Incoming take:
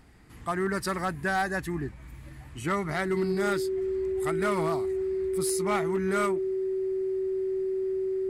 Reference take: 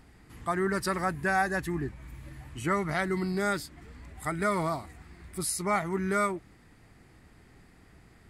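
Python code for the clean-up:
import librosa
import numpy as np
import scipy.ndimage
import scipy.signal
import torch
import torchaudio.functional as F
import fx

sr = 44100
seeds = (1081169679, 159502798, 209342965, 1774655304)

y = fx.fix_declip(x, sr, threshold_db=-21.0)
y = fx.notch(y, sr, hz=380.0, q=30.0)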